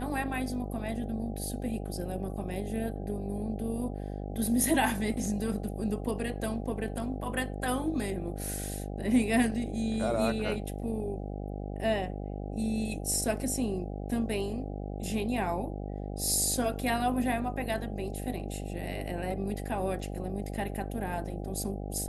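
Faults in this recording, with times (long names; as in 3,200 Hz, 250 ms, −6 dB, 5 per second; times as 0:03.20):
mains buzz 50 Hz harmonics 16 −37 dBFS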